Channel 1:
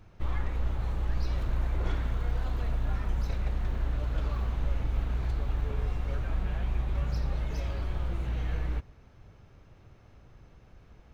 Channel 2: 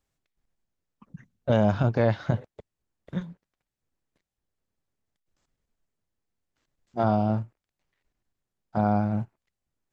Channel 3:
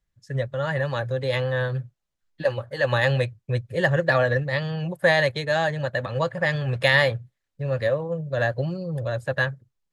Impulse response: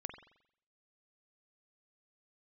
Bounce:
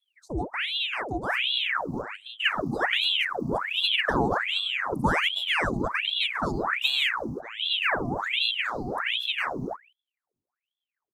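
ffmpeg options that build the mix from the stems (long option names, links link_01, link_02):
-filter_complex "[0:a]adelay=1100,volume=0dB[link_01];[1:a]highpass=250,equalizer=frequency=980:width=1.5:gain=-11,adelay=450,volume=-7dB[link_02];[2:a]asubboost=boost=6:cutoff=56,volume=1.5dB,asplit=2[link_03][link_04];[link_04]apad=whole_len=539480[link_05];[link_01][link_05]sidechaingate=range=-33dB:threshold=-53dB:ratio=16:detection=peak[link_06];[link_06][link_02][link_03]amix=inputs=3:normalize=0,asuperstop=centerf=2200:order=12:qfactor=0.55,equalizer=frequency=350:width=2.6:gain=-12,aeval=exprs='val(0)*sin(2*PI*1800*n/s+1800*0.9/1.3*sin(2*PI*1.3*n/s))':channel_layout=same"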